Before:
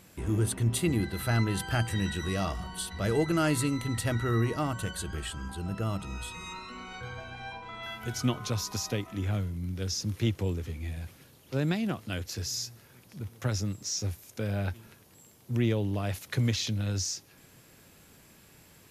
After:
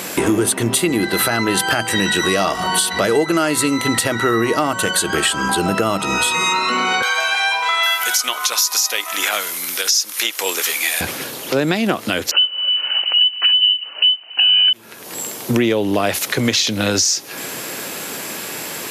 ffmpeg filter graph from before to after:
ffmpeg -i in.wav -filter_complex "[0:a]asettb=1/sr,asplit=3[link_01][link_02][link_03];[link_01]atrim=end=7.024[link_04];[link_02]atrim=start=7.02:end=11.01,asetpts=PTS-STARTPTS,afade=type=in:duration=0.004:curve=qsin,afade=type=out:start_time=3.986:duration=0.004:curve=qsin,highpass=1000,highshelf=frequency=6300:gain=12[link_05];[link_03]atrim=start=11.006[link_06];[link_04][link_05]acrossfade=duration=0.004:curve1=hsin:curve2=qsin[link_07];[link_07][link_06]acrossfade=duration=0.004:curve1=qsin:curve2=hsin,asettb=1/sr,asplit=3[link_08][link_09][link_10];[link_08]atrim=end=12.314[link_11];[link_09]atrim=start=12.31:end=14.73,asetpts=PTS-STARTPTS,afade=type=in:duration=0.004:curve=qsin,afade=type=out:start_time=2.416:duration=0.004:curve=qsin,equalizer=frequency=100:width=0.47:gain=12.5,lowpass=frequency=2600:width_type=q:width=0.5098,lowpass=frequency=2600:width_type=q:width=0.6013,lowpass=frequency=2600:width_type=q:width=0.9,lowpass=frequency=2600:width_type=q:width=2.563,afreqshift=-3100[link_12];[link_10]atrim=start=14.726[link_13];[link_11][link_12]acrossfade=duration=0.004:curve1=hsin:curve2=qsin[link_14];[link_14][link_13]acrossfade=duration=0.004:curve1=qsin:curve2=hsin,highpass=320,acompressor=threshold=-45dB:ratio=6,alimiter=level_in=34.5dB:limit=-1dB:release=50:level=0:latency=1,volume=-4dB" out.wav

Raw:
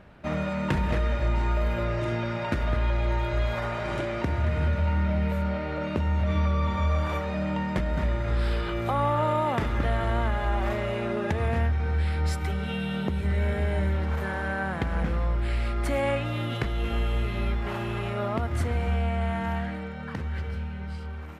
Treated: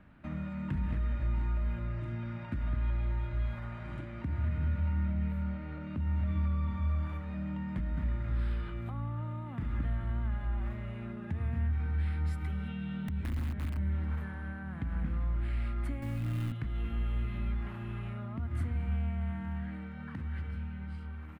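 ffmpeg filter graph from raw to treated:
ffmpeg -i in.wav -filter_complex "[0:a]asettb=1/sr,asplit=3[link_01][link_02][link_03];[link_01]atrim=end=12.684[link_04];[link_02]atrim=start=12.68:end=13.77,asetpts=PTS-STARTPTS,afade=type=in:duration=0.004:curve=qsin,afade=type=out:start_time=1.086:duration=0.004:curve=qsin,lowpass=6400,aeval=exprs='(mod(9.44*val(0)+1,2)-1)/9.44':channel_layout=same[link_05];[link_03]atrim=start=13.766[link_06];[link_04][link_05]acrossfade=duration=0.004:curve1=hsin:curve2=qsin[link_07];[link_07][link_06]acrossfade=duration=0.004:curve1=qsin:curve2=hsin,asettb=1/sr,asplit=3[link_08][link_09][link_10];[link_08]atrim=end=16.024[link_11];[link_09]atrim=start=16.02:end=16.52,asetpts=PTS-STARTPTS,afade=type=in:duration=0.004:curve=qsin,afade=type=out:start_time=0.496:duration=0.004:curve=qsin,highpass=64,acontrast=29,acrusher=bits=5:dc=4:mix=0:aa=0.000001[link_12];[link_10]atrim=start=16.516[link_13];[link_11][link_12]acrossfade=duration=0.004:curve1=hsin:curve2=qsin[link_14];[link_14][link_13]acrossfade=duration=0.004:curve1=qsin:curve2=hsin,acrossover=split=210[link_15][link_16];[link_16]acompressor=threshold=-36dB:ratio=6[link_17];[link_15][link_17]amix=inputs=2:normalize=0,firequalizer=gain_entry='entry(170,0);entry(280,3);entry(410,-10);entry(1200,-2);entry(1900,-2);entry(5700,-13);entry(9000,-7)':delay=0.05:min_phase=1,volume=-5.5dB" out.wav

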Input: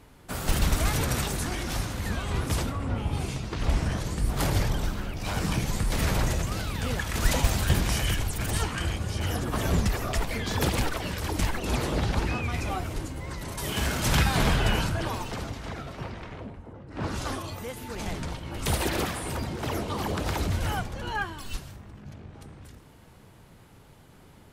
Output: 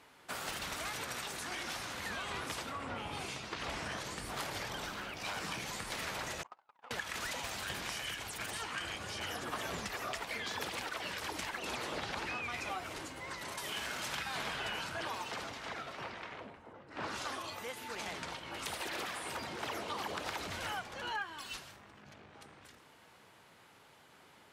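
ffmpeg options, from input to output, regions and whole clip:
ffmpeg -i in.wav -filter_complex "[0:a]asettb=1/sr,asplit=3[link_01][link_02][link_03];[link_01]atrim=end=6.434[link_04];[link_02]atrim=start=6.43:end=6.91,asetpts=PTS-STARTPTS,afade=type=in:duration=0.004:curve=qsin,afade=type=out:start_time=0.476:duration=0.004:curve=qsin,agate=range=-38dB:threshold=-27dB:ratio=16:release=100:detection=peak,bandpass=frequency=900:width_type=q:width=3.8,acontrast=34[link_05];[link_03]atrim=start=6.906[link_06];[link_04][link_05]acrossfade=duration=0.004:curve1=hsin:curve2=qsin[link_07];[link_07][link_06]acrossfade=duration=0.004:curve1=qsin:curve2=hsin,highpass=frequency=1300:poles=1,acompressor=threshold=-37dB:ratio=6,lowpass=frequency=3700:poles=1,volume=2.5dB" out.wav

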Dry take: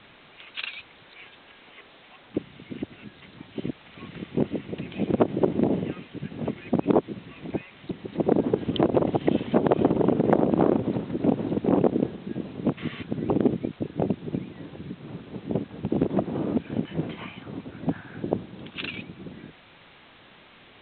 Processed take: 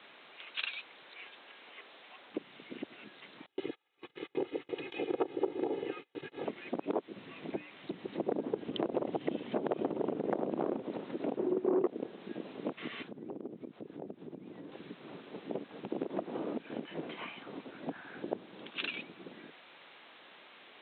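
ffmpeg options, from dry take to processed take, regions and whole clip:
ffmpeg -i in.wav -filter_complex "[0:a]asettb=1/sr,asplit=3[link_01][link_02][link_03];[link_01]atrim=end=3.464[link_04];[link_02]atrim=start=3.46:end=6.45,asetpts=PTS-STARTPTS,afade=type=in:duration=0.004:curve=qsin,afade=type=out:start_time=2.986:duration=0.004:curve=qsin,aecho=1:1:2.4:0.95,atrim=end_sample=131859,agate=range=-30dB:threshold=-39dB:ratio=16:release=100:detection=peak[link_05];[link_03]atrim=start=6.446[link_06];[link_04][link_05]acrossfade=duration=0.004:curve1=hsin:curve2=qsin[link_07];[link_07][link_06]acrossfade=duration=0.004:curve1=qsin:curve2=hsin,asettb=1/sr,asplit=3[link_08][link_09][link_10];[link_08]atrim=end=7.164[link_11];[link_09]atrim=start=7.16:end=10.8,asetpts=PTS-STARTPTS,afade=type=in:duration=0.004:curve=qsin,afade=type=out:start_time=3.636:duration=0.004:curve=qsin,lowshelf=frequency=210:gain=10.5,bandreject=frequency=60:width_type=h:width=6,bandreject=frequency=120:width_type=h:width=6,bandreject=frequency=180:width_type=h:width=6,bandreject=frequency=240:width_type=h:width=6,bandreject=frequency=300:width_type=h:width=6[link_12];[link_10]atrim=start=10.796[link_13];[link_11][link_12]acrossfade=duration=0.004:curve1=hsin:curve2=qsin[link_14];[link_14][link_13]acrossfade=duration=0.004:curve1=qsin:curve2=hsin,asettb=1/sr,asplit=3[link_15][link_16][link_17];[link_15]atrim=end=11.374[link_18];[link_16]atrim=start=11.37:end=11.86,asetpts=PTS-STARTPTS,afade=type=in:duration=0.004:curve=qsin,afade=type=out:start_time=0.486:duration=0.004:curve=qsin,lowpass=frequency=1000:poles=1,equalizer=frequency=370:width=7.8:gain=15,acontrast=87[link_19];[link_17]atrim=start=11.856[link_20];[link_18][link_19]acrossfade=duration=0.004:curve1=hsin:curve2=qsin[link_21];[link_21][link_20]acrossfade=duration=0.004:curve1=qsin:curve2=hsin,asettb=1/sr,asplit=3[link_22][link_23][link_24];[link_22]atrim=end=13.084[link_25];[link_23]atrim=start=13.08:end=14.72,asetpts=PTS-STARTPTS,afade=type=in:duration=0.004:curve=qsin,afade=type=out:start_time=1.636:duration=0.004:curve=qsin,tiltshelf=frequency=670:gain=7.5,acompressor=threshold=-33dB:ratio=5:attack=3.2:release=140:knee=1:detection=peak[link_26];[link_24]atrim=start=14.716[link_27];[link_25][link_26]acrossfade=duration=0.004:curve1=hsin:curve2=qsin[link_28];[link_28][link_27]acrossfade=duration=0.004:curve1=qsin:curve2=hsin,acompressor=threshold=-27dB:ratio=2.5,highpass=350,volume=-3dB" out.wav

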